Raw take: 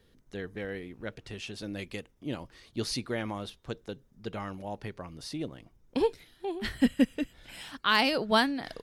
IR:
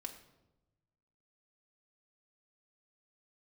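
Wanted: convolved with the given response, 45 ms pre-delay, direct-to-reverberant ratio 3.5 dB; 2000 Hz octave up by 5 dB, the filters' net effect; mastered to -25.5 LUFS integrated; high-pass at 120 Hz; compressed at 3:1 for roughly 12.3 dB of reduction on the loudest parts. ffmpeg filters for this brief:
-filter_complex "[0:a]highpass=120,equalizer=f=2k:t=o:g=6.5,acompressor=threshold=-34dB:ratio=3,asplit=2[a][b];[1:a]atrim=start_sample=2205,adelay=45[c];[b][c]afir=irnorm=-1:irlink=0,volume=-0.5dB[d];[a][d]amix=inputs=2:normalize=0,volume=11.5dB"

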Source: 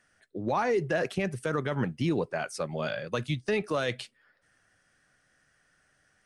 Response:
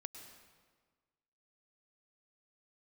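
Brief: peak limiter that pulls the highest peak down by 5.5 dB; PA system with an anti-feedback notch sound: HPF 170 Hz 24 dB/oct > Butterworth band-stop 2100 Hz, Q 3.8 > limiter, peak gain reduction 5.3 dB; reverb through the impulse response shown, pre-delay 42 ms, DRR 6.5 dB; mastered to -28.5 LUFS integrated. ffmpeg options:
-filter_complex "[0:a]alimiter=limit=-23.5dB:level=0:latency=1,asplit=2[a][b];[1:a]atrim=start_sample=2205,adelay=42[c];[b][c]afir=irnorm=-1:irlink=0,volume=-2.5dB[d];[a][d]amix=inputs=2:normalize=0,highpass=f=170:w=0.5412,highpass=f=170:w=1.3066,asuperstop=centerf=2100:order=8:qfactor=3.8,volume=7.5dB,alimiter=limit=-17.5dB:level=0:latency=1"

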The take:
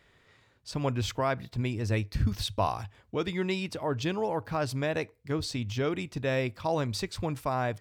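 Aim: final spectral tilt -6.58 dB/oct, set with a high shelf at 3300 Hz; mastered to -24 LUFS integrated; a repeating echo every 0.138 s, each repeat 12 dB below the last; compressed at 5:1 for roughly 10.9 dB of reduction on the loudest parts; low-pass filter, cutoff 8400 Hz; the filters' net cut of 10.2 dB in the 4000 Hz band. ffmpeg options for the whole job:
-af "lowpass=8.4k,highshelf=f=3.3k:g=-5,equalizer=f=4k:t=o:g=-9,acompressor=threshold=-35dB:ratio=5,aecho=1:1:138|276|414:0.251|0.0628|0.0157,volume=15.5dB"

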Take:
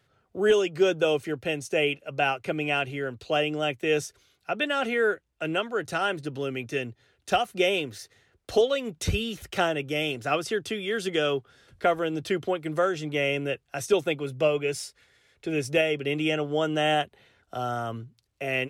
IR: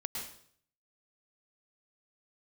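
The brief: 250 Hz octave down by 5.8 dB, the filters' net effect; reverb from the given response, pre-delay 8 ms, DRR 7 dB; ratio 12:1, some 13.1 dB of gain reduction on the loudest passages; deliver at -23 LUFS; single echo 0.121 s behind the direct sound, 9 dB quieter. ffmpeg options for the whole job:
-filter_complex "[0:a]equalizer=f=250:t=o:g=-9,acompressor=threshold=-32dB:ratio=12,aecho=1:1:121:0.355,asplit=2[a][b];[1:a]atrim=start_sample=2205,adelay=8[c];[b][c]afir=irnorm=-1:irlink=0,volume=-8.5dB[d];[a][d]amix=inputs=2:normalize=0,volume=13dB"

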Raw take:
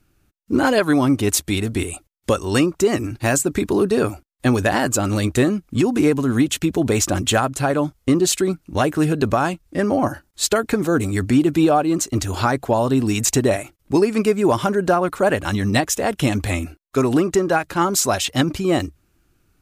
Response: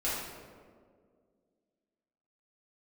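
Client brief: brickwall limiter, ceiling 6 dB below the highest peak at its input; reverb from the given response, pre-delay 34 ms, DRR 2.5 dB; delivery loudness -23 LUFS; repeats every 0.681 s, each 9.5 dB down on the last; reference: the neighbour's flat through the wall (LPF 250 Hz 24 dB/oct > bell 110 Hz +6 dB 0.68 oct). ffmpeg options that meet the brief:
-filter_complex "[0:a]alimiter=limit=-11.5dB:level=0:latency=1,aecho=1:1:681|1362|2043|2724:0.335|0.111|0.0365|0.012,asplit=2[a][b];[1:a]atrim=start_sample=2205,adelay=34[c];[b][c]afir=irnorm=-1:irlink=0,volume=-10dB[d];[a][d]amix=inputs=2:normalize=0,lowpass=f=250:w=0.5412,lowpass=f=250:w=1.3066,equalizer=f=110:t=o:w=0.68:g=6"

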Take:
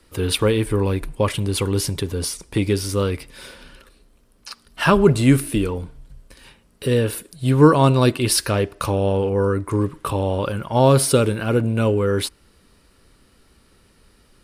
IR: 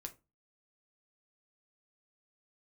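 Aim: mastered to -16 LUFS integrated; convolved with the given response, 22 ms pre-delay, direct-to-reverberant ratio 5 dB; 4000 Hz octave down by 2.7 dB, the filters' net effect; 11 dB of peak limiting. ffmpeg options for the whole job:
-filter_complex "[0:a]equalizer=f=4k:t=o:g=-3.5,alimiter=limit=-12dB:level=0:latency=1,asplit=2[a][b];[1:a]atrim=start_sample=2205,adelay=22[c];[b][c]afir=irnorm=-1:irlink=0,volume=-0.5dB[d];[a][d]amix=inputs=2:normalize=0,volume=5dB"

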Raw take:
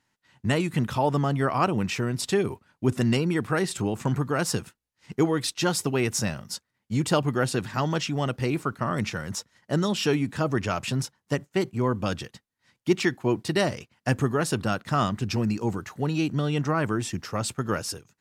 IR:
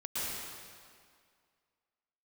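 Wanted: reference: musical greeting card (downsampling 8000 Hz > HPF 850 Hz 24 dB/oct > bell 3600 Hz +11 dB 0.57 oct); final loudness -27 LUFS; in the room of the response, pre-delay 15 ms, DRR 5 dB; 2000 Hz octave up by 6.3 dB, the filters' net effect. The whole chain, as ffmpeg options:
-filter_complex "[0:a]equalizer=f=2k:t=o:g=6.5,asplit=2[a][b];[1:a]atrim=start_sample=2205,adelay=15[c];[b][c]afir=irnorm=-1:irlink=0,volume=-10dB[d];[a][d]amix=inputs=2:normalize=0,aresample=8000,aresample=44100,highpass=f=850:w=0.5412,highpass=f=850:w=1.3066,equalizer=f=3.6k:t=o:w=0.57:g=11,volume=0.5dB"

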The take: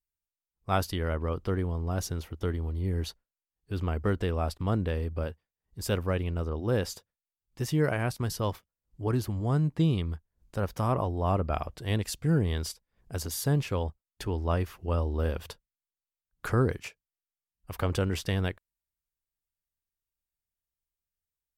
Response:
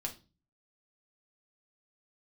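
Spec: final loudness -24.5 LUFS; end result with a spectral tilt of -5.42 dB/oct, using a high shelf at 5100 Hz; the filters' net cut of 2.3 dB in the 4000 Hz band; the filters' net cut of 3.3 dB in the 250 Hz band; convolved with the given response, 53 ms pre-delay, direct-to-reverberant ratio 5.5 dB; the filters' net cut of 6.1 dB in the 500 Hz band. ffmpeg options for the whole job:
-filter_complex "[0:a]equalizer=f=250:t=o:g=-3.5,equalizer=f=500:t=o:g=-6.5,equalizer=f=4k:t=o:g=-6,highshelf=f=5.1k:g=6,asplit=2[a][b];[1:a]atrim=start_sample=2205,adelay=53[c];[b][c]afir=irnorm=-1:irlink=0,volume=-5.5dB[d];[a][d]amix=inputs=2:normalize=0,volume=7dB"

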